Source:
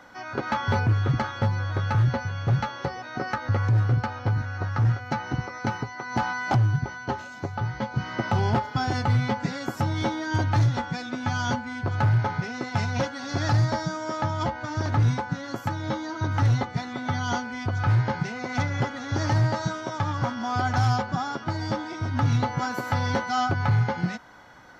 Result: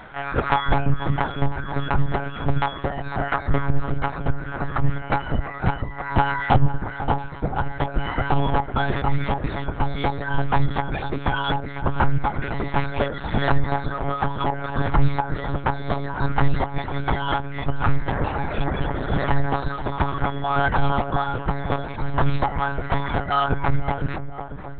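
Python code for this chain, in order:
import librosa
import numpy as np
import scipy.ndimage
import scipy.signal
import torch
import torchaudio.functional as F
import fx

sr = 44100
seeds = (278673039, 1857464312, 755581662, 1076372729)

y = fx.spec_repair(x, sr, seeds[0], start_s=18.12, length_s=1.0, low_hz=220.0, high_hz=2200.0, source='both')
y = fx.dereverb_blind(y, sr, rt60_s=1.5)
y = fx.hum_notches(y, sr, base_hz=60, count=9)
y = fx.rider(y, sr, range_db=10, speed_s=2.0)
y = fx.echo_tape(y, sr, ms=500, feedback_pct=81, wet_db=-9, lp_hz=1100.0, drive_db=7.0, wow_cents=22)
y = fx.lpc_monotone(y, sr, seeds[1], pitch_hz=140.0, order=10)
y = y * 10.0 ** (6.0 / 20.0)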